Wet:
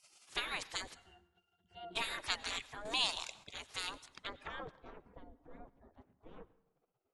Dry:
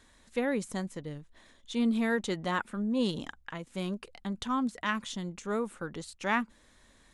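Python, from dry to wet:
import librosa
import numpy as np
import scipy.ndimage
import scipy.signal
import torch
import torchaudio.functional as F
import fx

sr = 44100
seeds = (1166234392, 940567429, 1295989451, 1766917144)

y = fx.spec_gate(x, sr, threshold_db=-25, keep='weak')
y = fx.comb(y, sr, ms=4.2, depth=0.61, at=(5.04, 5.66))
y = fx.filter_sweep_lowpass(y, sr, from_hz=8700.0, to_hz=420.0, start_s=3.97, end_s=5.04, q=0.71)
y = fx.octave_resonator(y, sr, note='F', decay_s=0.13, at=(0.93, 1.95), fade=0.02)
y = fx.rev_plate(y, sr, seeds[0], rt60_s=0.9, hf_ratio=0.65, predelay_ms=80, drr_db=19.0)
y = fx.band_squash(y, sr, depth_pct=70, at=(2.85, 3.44))
y = y * 10.0 ** (11.0 / 20.0)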